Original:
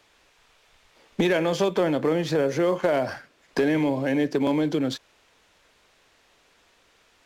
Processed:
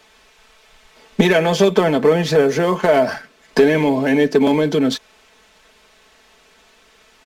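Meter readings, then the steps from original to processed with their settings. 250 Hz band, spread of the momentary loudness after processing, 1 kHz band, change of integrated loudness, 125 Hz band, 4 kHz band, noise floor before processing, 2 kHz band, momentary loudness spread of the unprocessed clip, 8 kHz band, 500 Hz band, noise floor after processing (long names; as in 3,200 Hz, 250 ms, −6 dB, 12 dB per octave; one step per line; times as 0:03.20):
+7.0 dB, 8 LU, +9.0 dB, +8.0 dB, +8.0 dB, +9.0 dB, −62 dBFS, +9.0 dB, 9 LU, +9.0 dB, +9.0 dB, −53 dBFS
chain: comb filter 4.6 ms
level +7.5 dB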